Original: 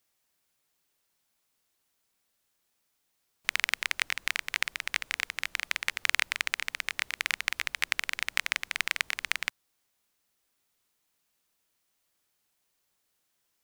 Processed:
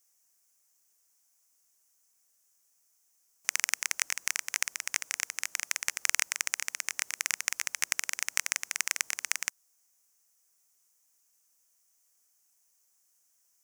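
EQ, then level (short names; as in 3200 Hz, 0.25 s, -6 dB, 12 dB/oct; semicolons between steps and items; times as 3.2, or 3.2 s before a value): HPF 440 Hz 6 dB/oct; resonant high shelf 4900 Hz +8 dB, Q 3; -2.5 dB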